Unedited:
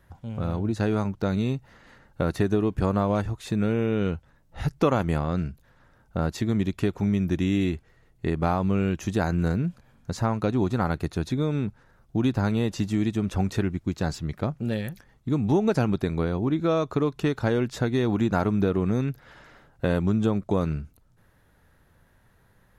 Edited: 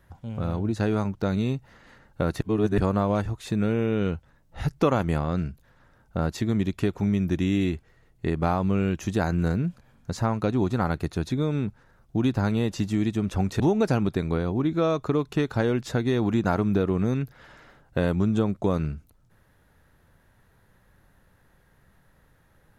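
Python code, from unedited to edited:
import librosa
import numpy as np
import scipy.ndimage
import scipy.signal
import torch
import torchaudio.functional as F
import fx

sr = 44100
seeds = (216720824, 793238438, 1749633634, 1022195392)

y = fx.edit(x, sr, fx.reverse_span(start_s=2.41, length_s=0.37),
    fx.cut(start_s=13.6, length_s=1.87), tone=tone)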